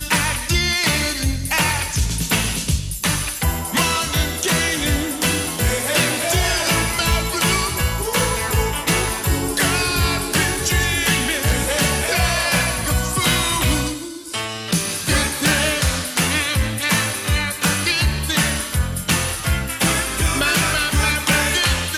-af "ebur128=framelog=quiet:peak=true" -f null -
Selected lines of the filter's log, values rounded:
Integrated loudness:
  I:         -18.5 LUFS
  Threshold: -28.5 LUFS
Loudness range:
  LRA:         1.6 LU
  Threshold: -38.7 LUFS
  LRA low:   -19.4 LUFS
  LRA high:  -17.8 LUFS
True peak:
  Peak:       -5.4 dBFS